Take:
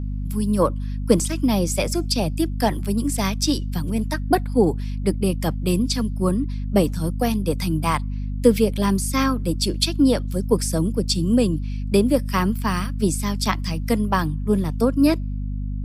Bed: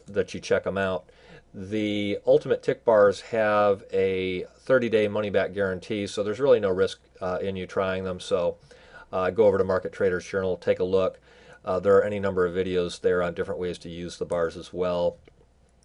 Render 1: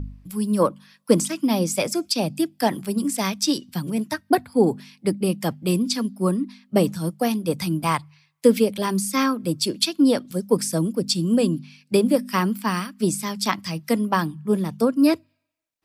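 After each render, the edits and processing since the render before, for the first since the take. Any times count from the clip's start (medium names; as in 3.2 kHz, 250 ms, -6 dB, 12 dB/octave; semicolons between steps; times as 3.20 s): de-hum 50 Hz, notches 5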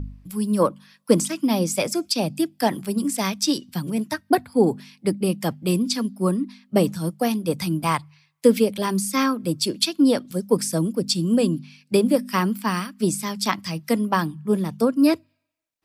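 no audible change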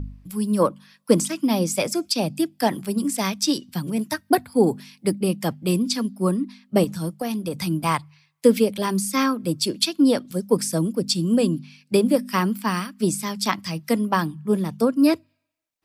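3.99–5.19 s: treble shelf 6.4 kHz +6 dB; 6.84–7.56 s: compression 5:1, threshold -22 dBFS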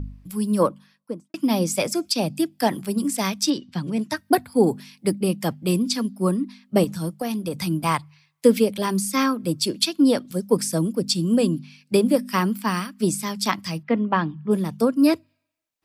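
0.58–1.34 s: studio fade out; 3.49–4.15 s: low-pass 3.3 kHz -> 8.7 kHz; 13.82–14.50 s: low-pass 2.6 kHz -> 4.3 kHz 24 dB/octave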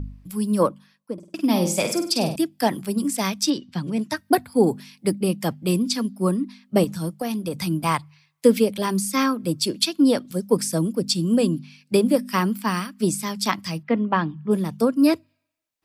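1.13–2.36 s: flutter echo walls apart 8.5 m, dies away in 0.44 s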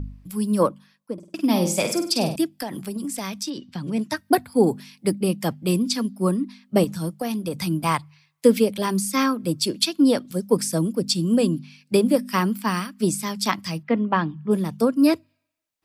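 2.59–3.85 s: compression 12:1, threshold -25 dBFS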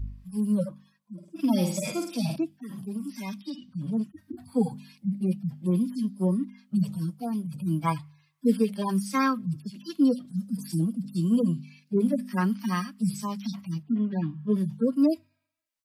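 harmonic-percussive separation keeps harmonic; peaking EQ 410 Hz -7 dB 1.4 oct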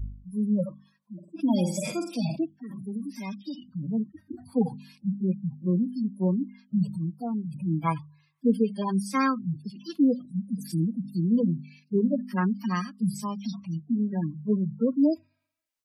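spectral gate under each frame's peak -30 dB strong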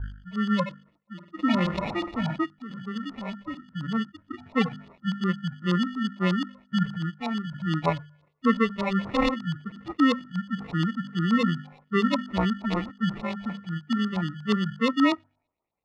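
sample-and-hold 28×; LFO low-pass saw up 8.4 Hz 900–4300 Hz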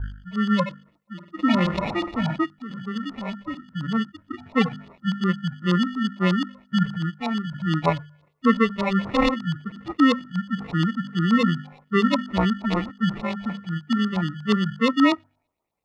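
trim +3.5 dB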